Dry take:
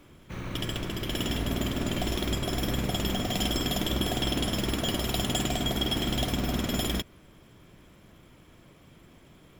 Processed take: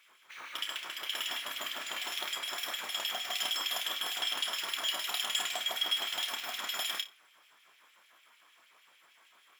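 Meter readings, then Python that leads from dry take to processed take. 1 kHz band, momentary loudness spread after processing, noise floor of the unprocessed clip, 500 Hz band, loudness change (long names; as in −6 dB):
−4.5 dB, 6 LU, −55 dBFS, −14.5 dB, −4.0 dB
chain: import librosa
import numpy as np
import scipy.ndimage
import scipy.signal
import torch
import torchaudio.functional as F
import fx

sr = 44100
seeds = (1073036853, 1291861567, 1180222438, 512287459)

y = fx.filter_lfo_highpass(x, sr, shape='sine', hz=6.6, low_hz=910.0, high_hz=2700.0, q=1.8)
y = fx.room_flutter(y, sr, wall_m=5.1, rt60_s=0.21)
y = F.gain(torch.from_numpy(y), -3.5).numpy()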